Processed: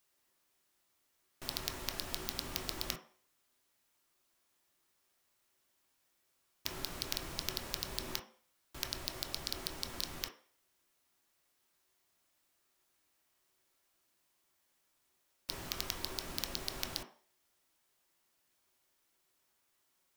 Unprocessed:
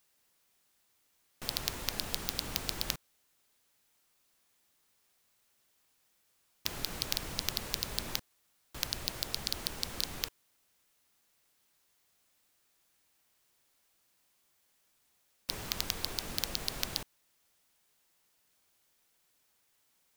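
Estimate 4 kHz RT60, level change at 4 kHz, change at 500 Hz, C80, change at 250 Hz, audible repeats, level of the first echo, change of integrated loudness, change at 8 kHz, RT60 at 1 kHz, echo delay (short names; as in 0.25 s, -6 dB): 0.45 s, -4.0 dB, -1.5 dB, 16.0 dB, -2.0 dB, none, none, -4.0 dB, -4.5 dB, 0.45 s, none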